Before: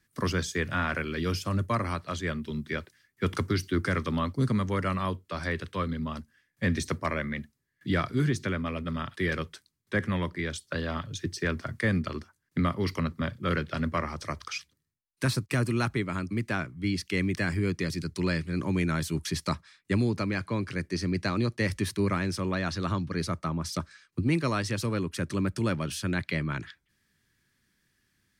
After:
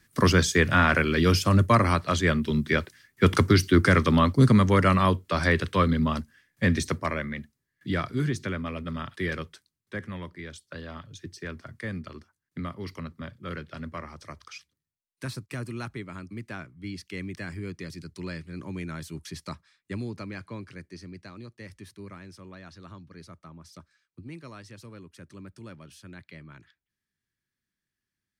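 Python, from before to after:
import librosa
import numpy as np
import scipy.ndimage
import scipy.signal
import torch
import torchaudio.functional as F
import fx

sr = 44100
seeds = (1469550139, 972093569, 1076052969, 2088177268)

y = fx.gain(x, sr, db=fx.line((6.07, 8.5), (7.36, -1.0), (9.27, -1.0), (10.08, -8.0), (20.51, -8.0), (21.29, -16.0)))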